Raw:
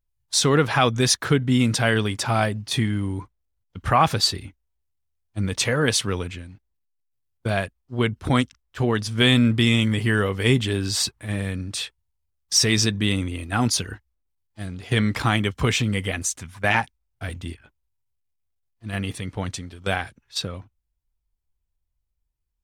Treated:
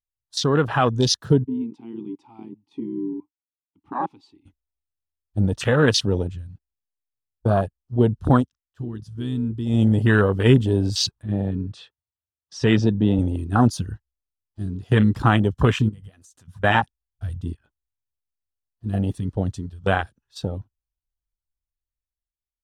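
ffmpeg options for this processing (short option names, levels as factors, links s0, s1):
-filter_complex "[0:a]asplit=3[s0][s1][s2];[s0]afade=t=out:st=1.43:d=0.02[s3];[s1]asplit=3[s4][s5][s6];[s4]bandpass=f=300:t=q:w=8,volume=1[s7];[s5]bandpass=f=870:t=q:w=8,volume=0.501[s8];[s6]bandpass=f=2240:t=q:w=8,volume=0.355[s9];[s7][s8][s9]amix=inputs=3:normalize=0,afade=t=in:st=1.43:d=0.02,afade=t=out:st=4.45:d=0.02[s10];[s2]afade=t=in:st=4.45:d=0.02[s11];[s3][s10][s11]amix=inputs=3:normalize=0,asettb=1/sr,asplit=3[s12][s13][s14];[s12]atrim=end=11.224[s15];[s13]atrim=start=11.22:end=13.19,asetpts=PTS-STARTPTS,afade=t=in:d=0.004:c=qsin,afade=t=out:st=1.966:d=0.004:c=qsin,highpass=100,lowpass=3700[s16];[s14]atrim=start=13.186[s17];[s15][s16]acrossfade=d=0.004:c1=hsin:c2=qsin[s18];[s18][s17]acrossfade=d=0.004:c1=qsin:c2=hsin,asplit=3[s19][s20][s21];[s19]afade=t=out:st=15.88:d=0.02[s22];[s20]acompressor=threshold=0.0141:ratio=6:attack=3.2:release=140:knee=1:detection=peak,afade=t=in:st=15.88:d=0.02,afade=t=out:st=16.61:d=0.02[s23];[s21]afade=t=in:st=16.61:d=0.02[s24];[s22][s23][s24]amix=inputs=3:normalize=0,asplit=3[s25][s26][s27];[s25]atrim=end=8.49,asetpts=PTS-STARTPTS,afade=t=out:st=8.32:d=0.17:silence=0.251189[s28];[s26]atrim=start=8.49:end=9.66,asetpts=PTS-STARTPTS,volume=0.251[s29];[s27]atrim=start=9.66,asetpts=PTS-STARTPTS,afade=t=in:d=0.17:silence=0.251189[s30];[s28][s29][s30]concat=n=3:v=0:a=1,afwtdn=0.0562,equalizer=f=2200:w=4.7:g=-14.5,dynaudnorm=f=150:g=13:m=2.37,volume=0.891"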